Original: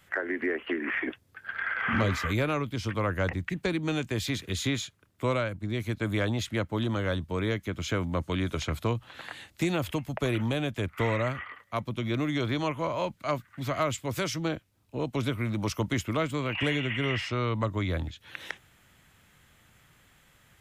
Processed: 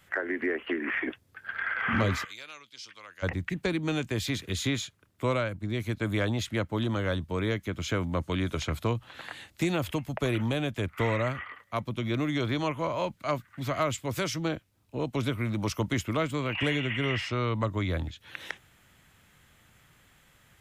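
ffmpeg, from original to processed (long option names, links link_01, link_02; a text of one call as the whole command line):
ffmpeg -i in.wav -filter_complex "[0:a]asplit=3[link_01][link_02][link_03];[link_01]afade=type=out:start_time=2.23:duration=0.02[link_04];[link_02]bandpass=frequency=5100:width_type=q:width=1.6,afade=type=in:start_time=2.23:duration=0.02,afade=type=out:start_time=3.22:duration=0.02[link_05];[link_03]afade=type=in:start_time=3.22:duration=0.02[link_06];[link_04][link_05][link_06]amix=inputs=3:normalize=0" out.wav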